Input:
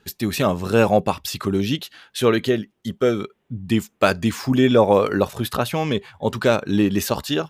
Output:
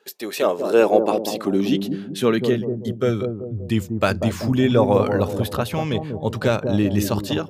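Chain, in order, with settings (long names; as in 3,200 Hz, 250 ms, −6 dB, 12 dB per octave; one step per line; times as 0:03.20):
bucket-brigade delay 191 ms, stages 1,024, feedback 47%, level −5.5 dB
high-pass filter sweep 470 Hz → 83 Hz, 0:00.33–0:03.55
level −3 dB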